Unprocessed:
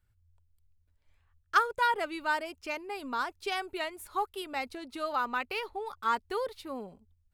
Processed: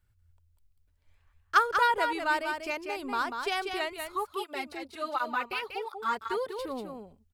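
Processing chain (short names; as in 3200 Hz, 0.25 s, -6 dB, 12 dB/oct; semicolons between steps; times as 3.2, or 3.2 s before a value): echo 0.191 s -6 dB; 4.12–6.59 tape flanging out of phase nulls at 1.4 Hz, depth 4.7 ms; gain +2 dB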